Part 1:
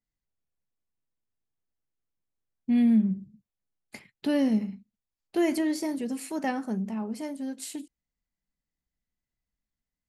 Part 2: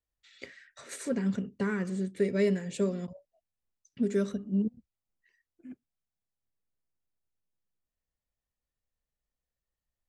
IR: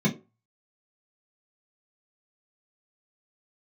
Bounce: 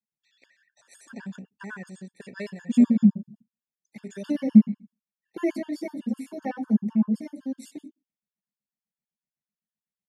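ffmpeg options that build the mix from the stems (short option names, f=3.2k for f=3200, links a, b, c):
-filter_complex "[0:a]adynamicequalizer=threshold=0.002:dfrequency=7100:dqfactor=0.84:tfrequency=7100:tqfactor=0.84:attack=5:release=100:ratio=0.375:range=2:mode=cutabove:tftype=bell,volume=-4dB,asplit=2[a][b];[b]volume=-7.5dB[c];[1:a]aecho=1:1:1.2:0.55,volume=0dB[d];[2:a]atrim=start_sample=2205[e];[c][e]afir=irnorm=-1:irlink=0[f];[a][d][f]amix=inputs=3:normalize=0,agate=range=-9dB:threshold=-37dB:ratio=16:detection=peak,highpass=f=470:p=1,afftfilt=real='re*gt(sin(2*PI*7.9*pts/sr)*(1-2*mod(floor(b*sr/1024/900),2)),0)':imag='im*gt(sin(2*PI*7.9*pts/sr)*(1-2*mod(floor(b*sr/1024/900),2)),0)':win_size=1024:overlap=0.75"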